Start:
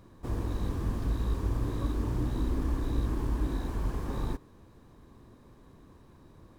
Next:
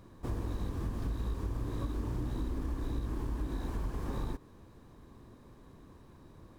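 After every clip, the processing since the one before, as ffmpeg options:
-af "acompressor=threshold=0.0282:ratio=6"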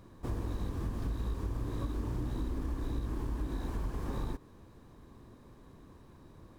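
-af anull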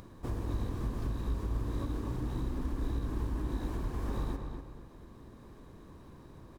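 -filter_complex "[0:a]asplit=2[s0][s1];[s1]adelay=243,lowpass=f=3400:p=1,volume=0.531,asplit=2[s2][s3];[s3]adelay=243,lowpass=f=3400:p=1,volume=0.36,asplit=2[s4][s5];[s5]adelay=243,lowpass=f=3400:p=1,volume=0.36,asplit=2[s6][s7];[s7]adelay=243,lowpass=f=3400:p=1,volume=0.36[s8];[s0][s2][s4][s6][s8]amix=inputs=5:normalize=0,acompressor=mode=upward:threshold=0.00501:ratio=2.5"

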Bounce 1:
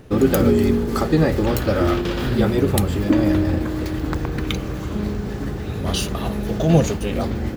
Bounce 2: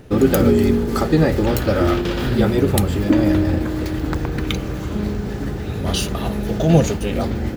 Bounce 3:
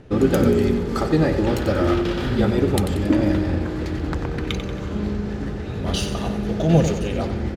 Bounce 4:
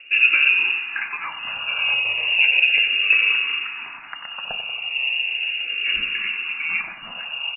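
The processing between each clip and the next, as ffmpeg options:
-af "bandreject=f=1100:w=18,volume=1.19"
-af "adynamicsmooth=sensitivity=5:basefreq=6400,aecho=1:1:92|184|276|368|460|552:0.335|0.174|0.0906|0.0471|0.0245|0.0127,volume=0.708"
-filter_complex "[0:a]lowpass=f=2500:t=q:w=0.5098,lowpass=f=2500:t=q:w=0.6013,lowpass=f=2500:t=q:w=0.9,lowpass=f=2500:t=q:w=2.563,afreqshift=-2900,asplit=2[s0][s1];[s1]afreqshift=-0.35[s2];[s0][s2]amix=inputs=2:normalize=1,volume=1.26"

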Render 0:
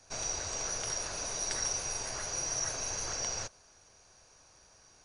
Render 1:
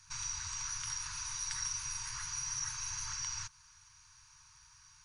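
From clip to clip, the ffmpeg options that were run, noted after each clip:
-filter_complex "[0:a]afftfilt=real='re*(1-between(b*sr/4096,160,880))':imag='im*(1-between(b*sr/4096,160,880))':win_size=4096:overlap=0.75,asplit=2[s0][s1];[s1]acompressor=threshold=0.00708:ratio=6,volume=1.26[s2];[s0][s2]amix=inputs=2:normalize=0,volume=0.473"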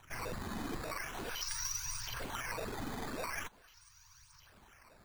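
-af "aphaser=in_gain=1:out_gain=1:delay=4:decay=0.52:speed=0.46:type=triangular,acrusher=samples=9:mix=1:aa=0.000001:lfo=1:lforange=14.4:lforate=0.43,volume=0.794"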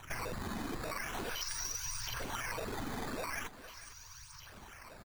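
-af "acompressor=threshold=0.00562:ratio=6,aecho=1:1:457:0.168,volume=2.66"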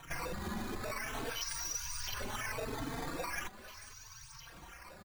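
-filter_complex "[0:a]asplit=2[s0][s1];[s1]adelay=3.9,afreqshift=0.67[s2];[s0][s2]amix=inputs=2:normalize=1,volume=1.41"

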